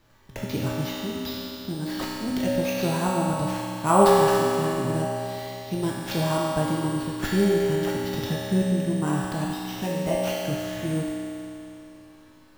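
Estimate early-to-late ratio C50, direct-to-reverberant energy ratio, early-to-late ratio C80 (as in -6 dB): -3.5 dB, -6.5 dB, -1.5 dB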